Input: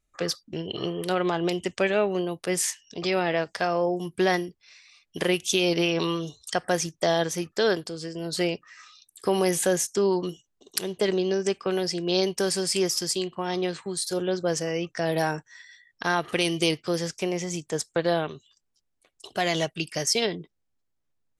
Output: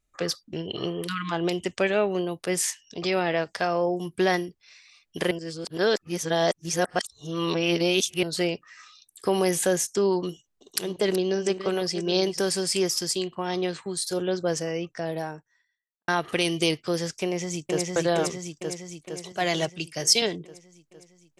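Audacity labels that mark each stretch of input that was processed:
1.070000	1.320000	spectral delete 340–940 Hz
5.310000	8.230000	reverse
10.190000	12.400000	reverse delay 0.387 s, level -11 dB
14.360000	16.080000	studio fade out
17.230000	17.890000	echo throw 0.46 s, feedback 65%, level -1 dB
19.320000	20.220000	three-band expander depth 70%

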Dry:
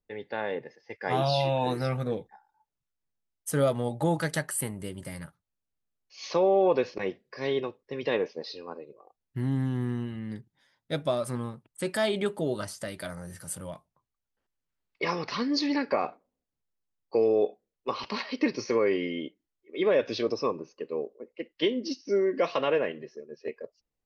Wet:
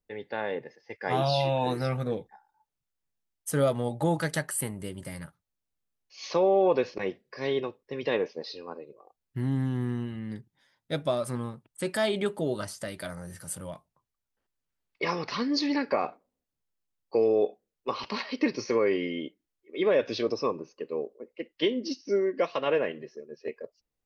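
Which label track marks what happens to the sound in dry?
22.160000	22.660000	upward expander, over -35 dBFS

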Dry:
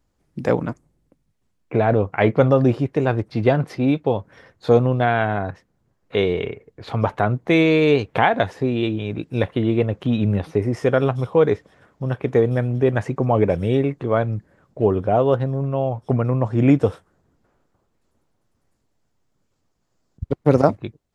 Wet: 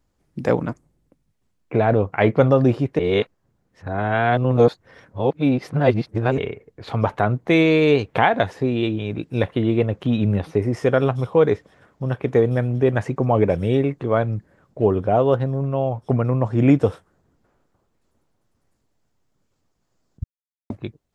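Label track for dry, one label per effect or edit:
2.990000	6.380000	reverse
20.240000	20.700000	mute

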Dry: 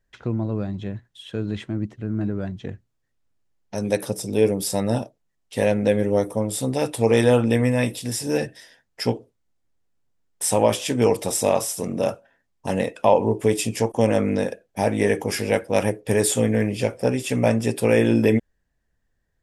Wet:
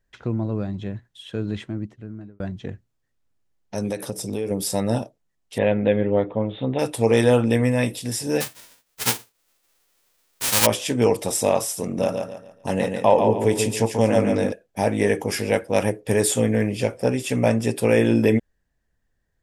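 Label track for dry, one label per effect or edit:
1.540000	2.400000	fade out
3.900000	4.510000	compressor, threshold -22 dBFS
5.580000	6.790000	steep low-pass 3700 Hz 96 dB/oct
8.400000	10.650000	spectral whitening exponent 0.1
11.840000	14.520000	feedback echo 0.142 s, feedback 34%, level -5.5 dB

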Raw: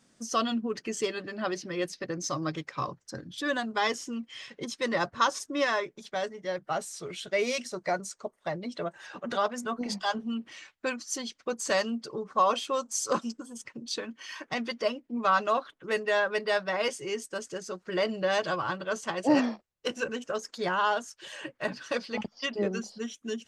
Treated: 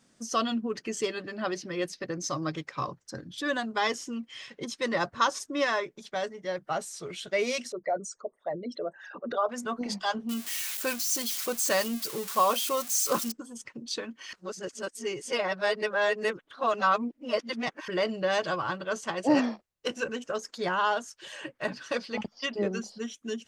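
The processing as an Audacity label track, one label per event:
7.720000	9.490000	formant sharpening exponent 2
10.290000	13.320000	switching spikes of -24.5 dBFS
14.330000	17.880000	reverse

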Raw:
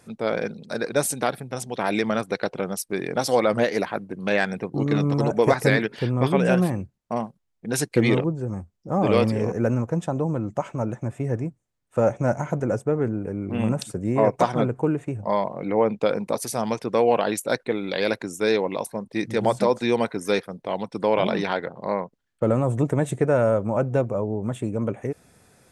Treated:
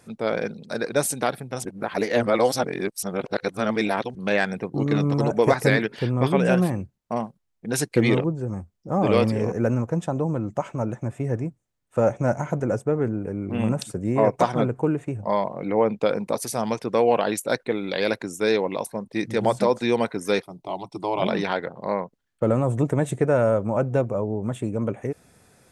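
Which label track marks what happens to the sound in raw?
1.650000	4.150000	reverse
20.420000	21.220000	fixed phaser centre 330 Hz, stages 8

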